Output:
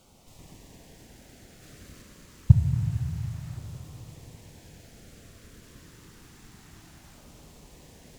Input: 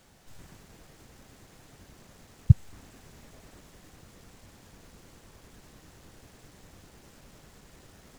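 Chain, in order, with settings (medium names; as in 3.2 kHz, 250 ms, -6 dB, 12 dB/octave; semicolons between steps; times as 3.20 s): 1.62–2.02 s: waveshaping leveller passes 1; LFO notch saw down 0.28 Hz 420–1800 Hz; Chebyshev shaper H 8 -37 dB, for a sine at -2.5 dBFS; Schroeder reverb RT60 3.7 s, combs from 25 ms, DRR 2.5 dB; trim +1.5 dB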